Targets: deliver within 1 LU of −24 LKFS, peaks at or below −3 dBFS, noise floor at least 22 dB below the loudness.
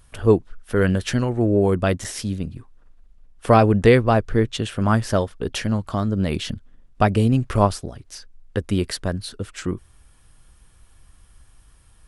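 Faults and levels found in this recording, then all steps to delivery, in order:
number of dropouts 1; longest dropout 5.0 ms; integrated loudness −21.0 LKFS; sample peak −2.0 dBFS; target loudness −24.0 LKFS
→ repair the gap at 0:02.04, 5 ms
level −3 dB

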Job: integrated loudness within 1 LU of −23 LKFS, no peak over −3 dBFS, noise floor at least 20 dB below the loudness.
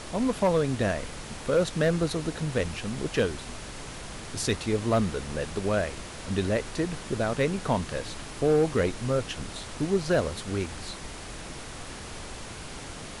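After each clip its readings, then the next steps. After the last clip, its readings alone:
share of clipped samples 0.3%; peaks flattened at −16.0 dBFS; background noise floor −41 dBFS; target noise floor −49 dBFS; integrated loudness −28.5 LKFS; sample peak −16.0 dBFS; target loudness −23.0 LKFS
→ clipped peaks rebuilt −16 dBFS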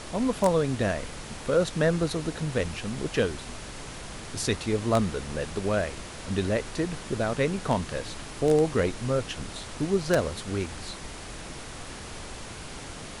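share of clipped samples 0.0%; background noise floor −41 dBFS; target noise floor −48 dBFS
→ noise reduction from a noise print 7 dB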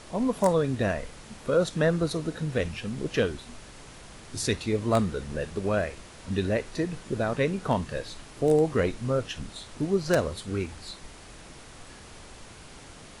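background noise floor −47 dBFS; target noise floor −48 dBFS
→ noise reduction from a noise print 6 dB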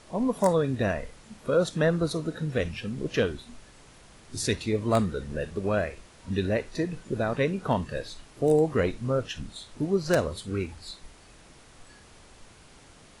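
background noise floor −53 dBFS; integrated loudness −28.0 LKFS; sample peak −7.0 dBFS; target loudness −23.0 LKFS
→ level +5 dB
brickwall limiter −3 dBFS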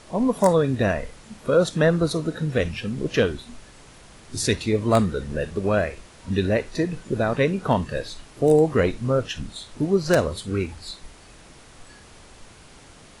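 integrated loudness −23.0 LKFS; sample peak −3.0 dBFS; background noise floor −48 dBFS

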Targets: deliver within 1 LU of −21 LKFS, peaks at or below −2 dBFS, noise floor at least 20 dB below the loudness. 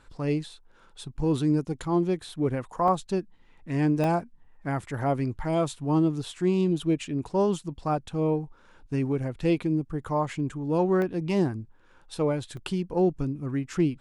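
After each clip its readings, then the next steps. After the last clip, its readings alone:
number of dropouts 4; longest dropout 1.1 ms; integrated loudness −27.5 LKFS; sample peak −13.0 dBFS; target loudness −21.0 LKFS
→ repair the gap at 0:02.88/0:04.04/0:11.02/0:12.57, 1.1 ms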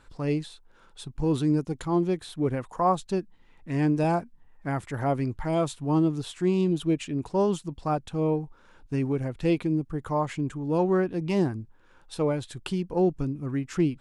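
number of dropouts 0; integrated loudness −27.5 LKFS; sample peak −13.0 dBFS; target loudness −21.0 LKFS
→ level +6.5 dB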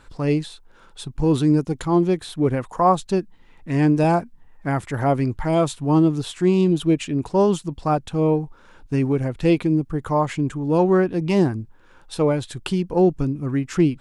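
integrated loudness −21.0 LKFS; sample peak −6.5 dBFS; background noise floor −50 dBFS

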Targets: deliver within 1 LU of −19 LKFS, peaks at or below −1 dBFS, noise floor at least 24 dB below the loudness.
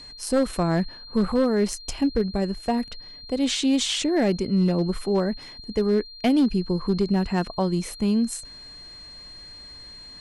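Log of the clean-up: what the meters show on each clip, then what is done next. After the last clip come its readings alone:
share of clipped samples 0.7%; peaks flattened at −14.5 dBFS; interfering tone 4,200 Hz; level of the tone −41 dBFS; integrated loudness −24.0 LKFS; sample peak −14.5 dBFS; target loudness −19.0 LKFS
→ clipped peaks rebuilt −14.5 dBFS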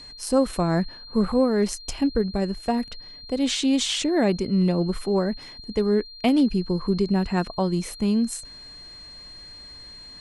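share of clipped samples 0.0%; interfering tone 4,200 Hz; level of the tone −41 dBFS
→ notch filter 4,200 Hz, Q 30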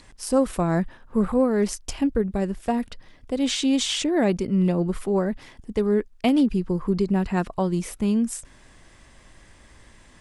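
interfering tone none found; integrated loudness −24.0 LKFS; sample peak −8.5 dBFS; target loudness −19.0 LKFS
→ level +5 dB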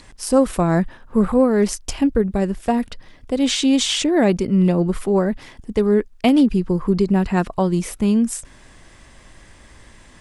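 integrated loudness −19.0 LKFS; sample peak −3.5 dBFS; background noise floor −47 dBFS

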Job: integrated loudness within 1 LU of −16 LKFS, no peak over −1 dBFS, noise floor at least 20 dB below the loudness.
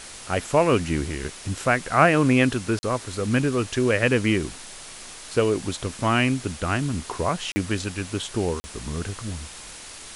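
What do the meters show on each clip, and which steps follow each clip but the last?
number of dropouts 3; longest dropout 40 ms; background noise floor −41 dBFS; target noise floor −44 dBFS; integrated loudness −24.0 LKFS; sample peak −4.5 dBFS; target loudness −16.0 LKFS
→ repair the gap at 0:02.79/0:07.52/0:08.60, 40 ms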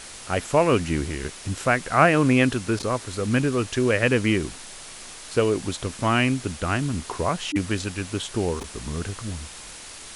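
number of dropouts 0; background noise floor −41 dBFS; target noise floor −44 dBFS
→ broadband denoise 6 dB, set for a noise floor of −41 dBFS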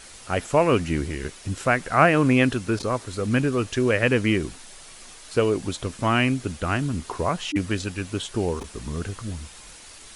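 background noise floor −45 dBFS; integrated loudness −24.0 LKFS; sample peak −4.5 dBFS; target loudness −16.0 LKFS
→ level +8 dB
brickwall limiter −1 dBFS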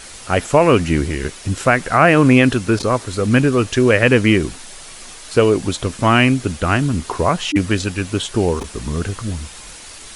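integrated loudness −16.5 LKFS; sample peak −1.0 dBFS; background noise floor −37 dBFS

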